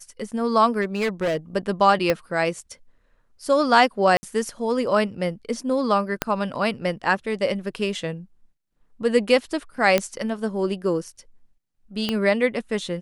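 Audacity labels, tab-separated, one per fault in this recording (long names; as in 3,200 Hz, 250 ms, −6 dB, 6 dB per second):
0.810000	1.370000	clipping −19.5 dBFS
2.100000	2.100000	click −7 dBFS
4.170000	4.230000	drop-out 60 ms
6.220000	6.220000	click −5 dBFS
9.980000	9.980000	click −5 dBFS
12.090000	12.090000	click −10 dBFS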